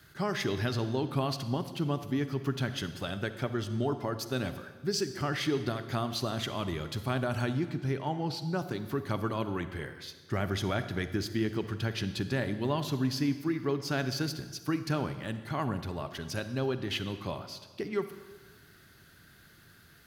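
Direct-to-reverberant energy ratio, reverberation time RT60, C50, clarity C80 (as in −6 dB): 10.5 dB, 1.4 s, 11.0 dB, 12.5 dB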